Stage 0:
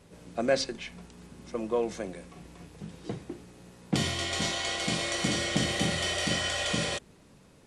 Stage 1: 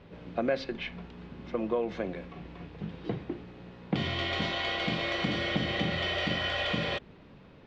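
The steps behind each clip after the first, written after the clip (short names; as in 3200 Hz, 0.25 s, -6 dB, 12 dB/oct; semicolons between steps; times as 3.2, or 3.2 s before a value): compressor 3:1, threshold -31 dBFS, peak gain reduction 9 dB; LPF 3600 Hz 24 dB/oct; gain +4 dB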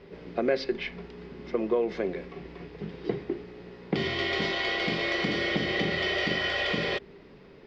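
thirty-one-band EQ 100 Hz -12 dB, 400 Hz +12 dB, 2000 Hz +6 dB, 5000 Hz +9 dB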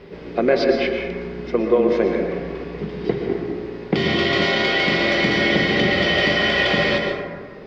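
plate-style reverb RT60 1.6 s, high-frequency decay 0.35×, pre-delay 0.105 s, DRR 2 dB; gain +8 dB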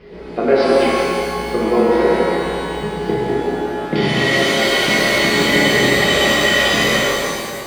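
bin magnitudes rounded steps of 15 dB; shimmer reverb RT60 1.8 s, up +12 st, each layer -8 dB, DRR -4 dB; gain -1.5 dB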